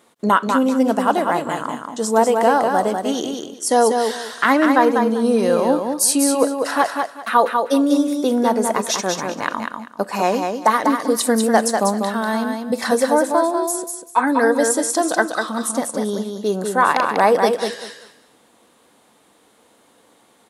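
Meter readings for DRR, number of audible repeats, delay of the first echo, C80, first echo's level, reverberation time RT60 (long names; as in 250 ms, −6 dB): no reverb audible, 3, 195 ms, no reverb audible, −5.0 dB, no reverb audible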